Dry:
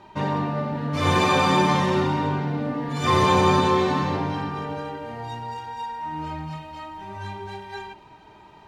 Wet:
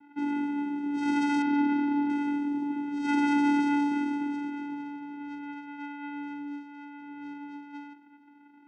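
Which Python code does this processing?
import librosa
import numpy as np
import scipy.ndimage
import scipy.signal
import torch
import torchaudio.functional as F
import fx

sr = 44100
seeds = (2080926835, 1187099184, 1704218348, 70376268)

y = fx.vocoder(x, sr, bands=4, carrier='square', carrier_hz=288.0)
y = fx.env_lowpass(y, sr, base_hz=2600.0, full_db=-20.5)
y = fx.air_absorb(y, sr, metres=250.0, at=(1.42, 2.1))
y = y * librosa.db_to_amplitude(-5.0)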